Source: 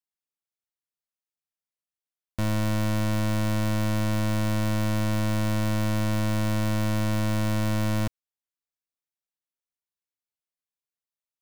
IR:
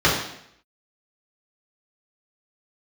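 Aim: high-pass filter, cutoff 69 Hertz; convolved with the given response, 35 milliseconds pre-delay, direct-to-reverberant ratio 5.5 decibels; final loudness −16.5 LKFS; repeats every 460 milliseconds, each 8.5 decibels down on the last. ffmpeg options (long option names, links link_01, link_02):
-filter_complex "[0:a]highpass=69,aecho=1:1:460|920|1380|1840:0.376|0.143|0.0543|0.0206,asplit=2[link_01][link_02];[1:a]atrim=start_sample=2205,adelay=35[link_03];[link_02][link_03]afir=irnorm=-1:irlink=0,volume=-26.5dB[link_04];[link_01][link_04]amix=inputs=2:normalize=0,volume=13.5dB"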